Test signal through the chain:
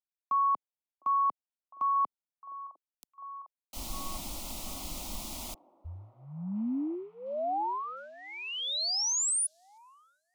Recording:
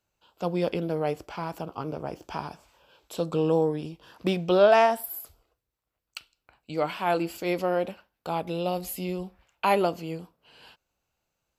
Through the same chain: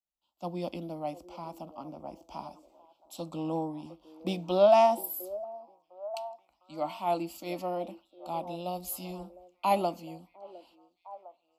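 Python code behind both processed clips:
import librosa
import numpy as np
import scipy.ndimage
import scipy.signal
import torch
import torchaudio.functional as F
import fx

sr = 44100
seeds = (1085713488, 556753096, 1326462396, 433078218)

y = fx.fixed_phaser(x, sr, hz=440.0, stages=6)
y = fx.echo_stepped(y, sr, ms=706, hz=450.0, octaves=0.7, feedback_pct=70, wet_db=-10)
y = fx.band_widen(y, sr, depth_pct=40)
y = y * 10.0 ** (-4.0 / 20.0)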